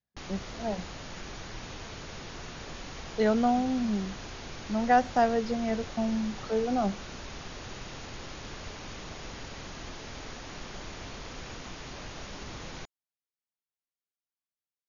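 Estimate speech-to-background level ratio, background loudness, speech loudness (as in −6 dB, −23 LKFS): 13.5 dB, −42.0 LKFS, −28.5 LKFS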